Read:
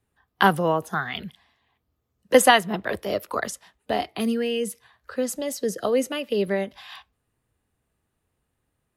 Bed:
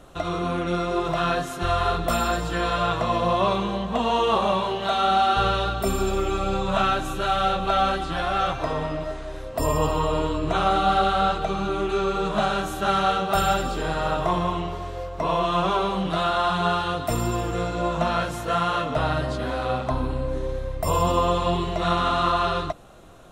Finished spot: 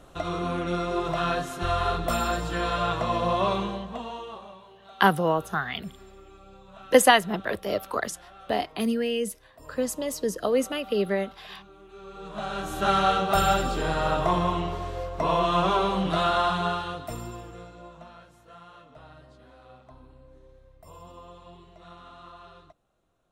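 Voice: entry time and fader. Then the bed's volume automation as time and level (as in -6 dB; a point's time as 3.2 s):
4.60 s, -1.5 dB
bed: 3.62 s -3 dB
4.59 s -25.5 dB
11.85 s -25.5 dB
12.82 s -0.5 dB
16.38 s -0.5 dB
18.2 s -25.5 dB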